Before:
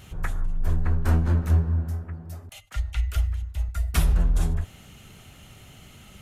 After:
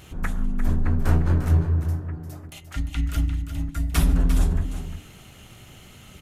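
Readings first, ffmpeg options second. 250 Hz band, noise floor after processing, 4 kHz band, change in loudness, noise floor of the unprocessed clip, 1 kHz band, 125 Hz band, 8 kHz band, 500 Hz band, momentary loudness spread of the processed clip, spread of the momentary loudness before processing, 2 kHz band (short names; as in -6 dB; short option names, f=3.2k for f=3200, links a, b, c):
+5.5 dB, -47 dBFS, +2.0 dB, +1.5 dB, -50 dBFS, +2.0 dB, +1.5 dB, +2.0 dB, +3.0 dB, 15 LU, 14 LU, +2.0 dB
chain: -af "tremolo=f=220:d=0.571,bandreject=f=50:t=h:w=6,bandreject=f=100:t=h:w=6,bandreject=f=150:t=h:w=6,bandreject=f=200:t=h:w=6,bandreject=f=250:t=h:w=6,bandreject=f=300:t=h:w=6,aecho=1:1:349:0.335,volume=4dB"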